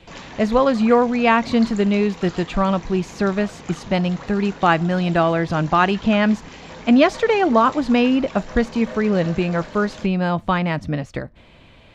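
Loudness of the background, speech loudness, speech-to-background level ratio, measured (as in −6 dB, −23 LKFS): −38.0 LKFS, −19.0 LKFS, 19.0 dB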